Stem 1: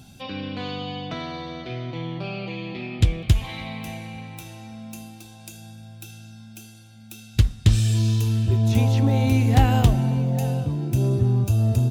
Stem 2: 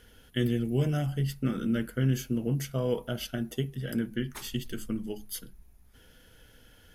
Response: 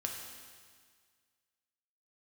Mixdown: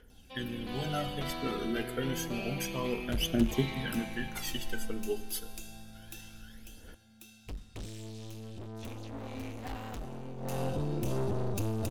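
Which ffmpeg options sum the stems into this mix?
-filter_complex "[0:a]aeval=exprs='(tanh(17.8*val(0)+0.25)-tanh(0.25))/17.8':c=same,adelay=100,volume=-2.5dB,afade=t=out:st=6.2:d=0.51:silence=0.473151,afade=t=in:st=10.36:d=0.26:silence=0.281838,asplit=2[a][b];[b]volume=-15dB[c];[1:a]aphaser=in_gain=1:out_gain=1:delay=2.6:decay=0.75:speed=0.29:type=triangular,volume=-13dB,asplit=2[d][e];[e]volume=-9.5dB[f];[2:a]atrim=start_sample=2205[g];[c][f]amix=inputs=2:normalize=0[h];[h][g]afir=irnorm=-1:irlink=0[i];[a][d][i]amix=inputs=3:normalize=0,equalizer=f=120:t=o:w=0.73:g=-10.5,dynaudnorm=f=500:g=3:m=8.5dB"

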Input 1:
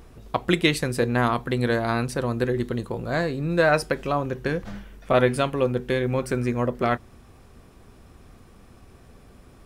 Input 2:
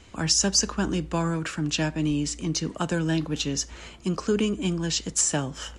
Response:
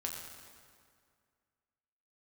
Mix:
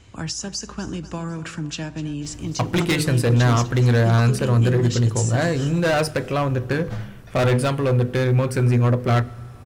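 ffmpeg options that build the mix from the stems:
-filter_complex "[0:a]bandreject=f=50:t=h:w=6,bandreject=f=100:t=h:w=6,bandreject=f=150:t=h:w=6,bandreject=f=200:t=h:w=6,bandreject=f=250:t=h:w=6,bandreject=f=300:t=h:w=6,bandreject=f=350:t=h:w=6,bandreject=f=400:t=h:w=6,bandreject=f=450:t=h:w=6,bandreject=f=500:t=h:w=6,volume=20.5dB,asoftclip=hard,volume=-20.5dB,adelay=2250,volume=3dB,asplit=2[a][b];[b]volume=-16.5dB[c];[1:a]acompressor=threshold=-25dB:ratio=6,volume=-2dB,asplit=3[d][e][f];[e]volume=-20dB[g];[f]volume=-15dB[h];[2:a]atrim=start_sample=2205[i];[c][g]amix=inputs=2:normalize=0[j];[j][i]afir=irnorm=-1:irlink=0[k];[h]aecho=0:1:250|500|750|1000|1250|1500|1750:1|0.48|0.23|0.111|0.0531|0.0255|0.0122[l];[a][d][k][l]amix=inputs=4:normalize=0,equalizer=f=110:t=o:w=0.56:g=13"

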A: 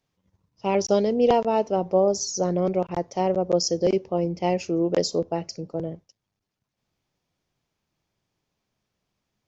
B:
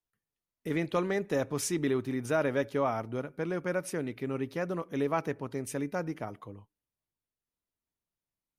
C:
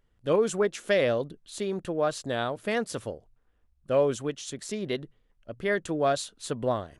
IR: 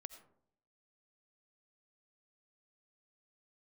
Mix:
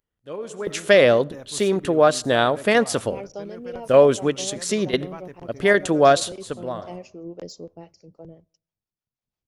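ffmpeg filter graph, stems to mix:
-filter_complex "[0:a]deesser=0.5,acrossover=split=410[a][b];[a]aeval=exprs='val(0)*(1-0.7/2+0.7/2*cos(2*PI*6*n/s))':c=same[c];[b]aeval=exprs='val(0)*(1-0.7/2-0.7/2*cos(2*PI*6*n/s))':c=same[d];[c][d]amix=inputs=2:normalize=0,adelay=2450,volume=-20dB,asplit=2[e][f];[f]volume=-21dB[g];[1:a]volume=-18dB,asplit=2[h][i];[2:a]highpass=f=210:p=1,volume=1.5dB,asplit=2[j][k];[k]volume=-8.5dB[l];[i]apad=whole_len=308678[m];[j][m]sidechaingate=range=-24dB:threshold=-58dB:ratio=16:detection=peak[n];[3:a]atrim=start_sample=2205[o];[g][l]amix=inputs=2:normalize=0[p];[p][o]afir=irnorm=-1:irlink=0[q];[e][h][n][q]amix=inputs=4:normalize=0,lowshelf=f=63:g=10.5,dynaudnorm=f=120:g=9:m=9dB"

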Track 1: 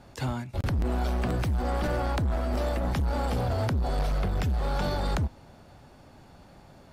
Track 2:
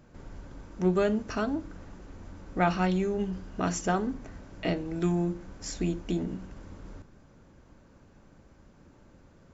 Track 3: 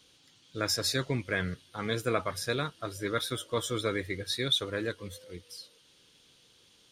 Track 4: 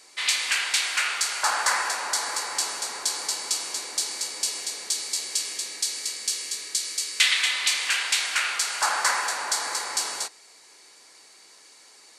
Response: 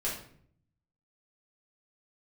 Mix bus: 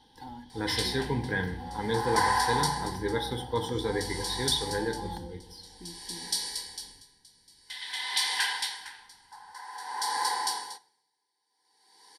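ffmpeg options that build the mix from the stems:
-filter_complex "[0:a]highpass=f=98:p=1,aecho=1:1:3.6:0.65,volume=-16.5dB,asplit=2[a][b];[b]volume=-10.5dB[c];[1:a]volume=-18dB[d];[2:a]highshelf=f=5.2k:g=-8.5,volume=-2dB,asplit=2[e][f];[f]volume=-8dB[g];[3:a]aeval=exprs='val(0)*pow(10,-28*(0.5-0.5*cos(2*PI*0.51*n/s))/20)':c=same,adelay=500,volume=-1.5dB,asplit=2[h][i];[i]volume=-19dB[j];[4:a]atrim=start_sample=2205[k];[c][g][j]amix=inputs=3:normalize=0[l];[l][k]afir=irnorm=-1:irlink=0[m];[a][d][e][h][m]amix=inputs=5:normalize=0,superequalizer=8b=0.251:9b=2.82:10b=0.251:12b=0.282:15b=0.282"

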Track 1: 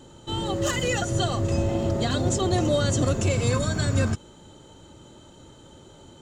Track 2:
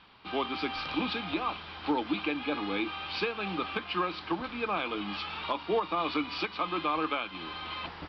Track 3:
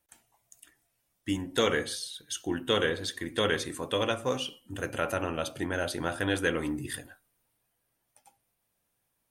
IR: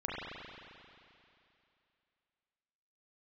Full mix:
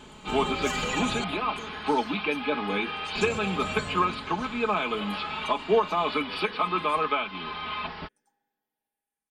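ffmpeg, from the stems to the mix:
-filter_complex "[0:a]acompressor=threshold=-27dB:ratio=6,volume=-4dB,asplit=3[a][b][c];[a]atrim=end=1.24,asetpts=PTS-STARTPTS,afade=t=out:st=1.236:d=0.004:c=hsin[d];[b]atrim=start=1.24:end=3.15,asetpts=PTS-STARTPTS,volume=0[e];[c]atrim=start=3.15,asetpts=PTS-STARTPTS,afade=t=in:d=0.004:c=hsin[f];[d][e][f]concat=n=3:v=0:a=1,asplit=2[g][h];[h]volume=-14.5dB[i];[1:a]acrossover=split=4300[j][k];[k]acompressor=threshold=-60dB:ratio=4:attack=1:release=60[l];[j][l]amix=inputs=2:normalize=0,volume=3dB[m];[2:a]lowshelf=f=340:g=-5.5,asplit=2[n][o];[o]afreqshift=-0.78[p];[n][p]amix=inputs=2:normalize=1,volume=-16.5dB,asplit=3[q][r][s];[r]volume=-6dB[t];[s]apad=whole_len=274189[u];[g][u]sidechaincompress=threshold=-55dB:ratio=8:attack=16:release=282[v];[3:a]atrim=start_sample=2205[w];[i][t]amix=inputs=2:normalize=0[x];[x][w]afir=irnorm=-1:irlink=0[y];[v][m][q][y]amix=inputs=4:normalize=0,aecho=1:1:4.7:0.8"

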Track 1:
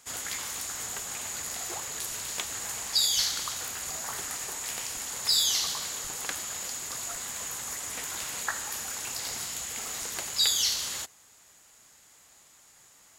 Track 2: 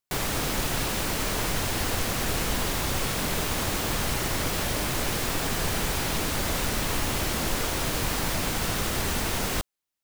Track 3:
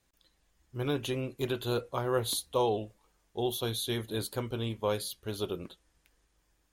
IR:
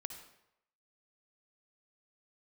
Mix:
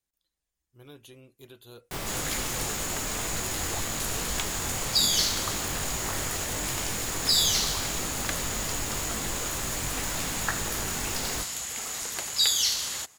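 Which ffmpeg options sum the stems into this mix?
-filter_complex "[0:a]adelay=2000,volume=1.5dB[a];[1:a]flanger=delay=18.5:depth=4.7:speed=1.9,adelay=1800,volume=-3dB[b];[2:a]highshelf=f=4.9k:g=11.5,volume=-18dB[c];[a][b][c]amix=inputs=3:normalize=0"

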